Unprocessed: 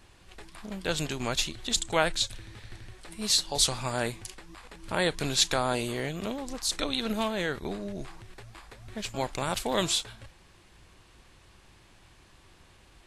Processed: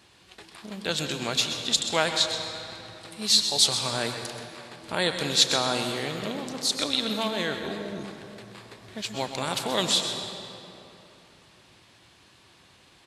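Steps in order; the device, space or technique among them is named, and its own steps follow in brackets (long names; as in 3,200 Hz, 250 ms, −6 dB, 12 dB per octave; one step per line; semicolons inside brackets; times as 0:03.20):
PA in a hall (high-pass filter 120 Hz 12 dB per octave; parametric band 4,000 Hz +5.5 dB 1 octave; single-tap delay 129 ms −11.5 dB; convolution reverb RT60 3.2 s, pre-delay 95 ms, DRR 6.5 dB)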